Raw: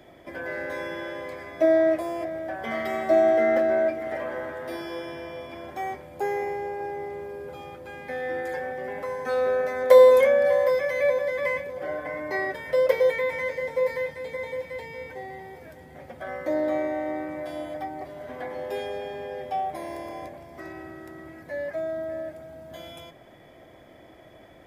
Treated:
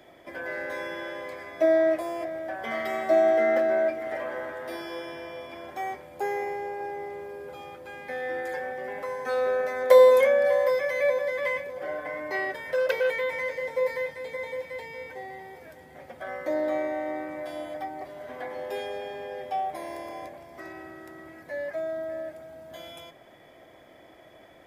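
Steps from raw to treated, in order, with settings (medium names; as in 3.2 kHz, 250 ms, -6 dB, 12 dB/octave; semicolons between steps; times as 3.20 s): bass shelf 270 Hz -8.5 dB; 11.38–13.66 s: transformer saturation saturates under 1.8 kHz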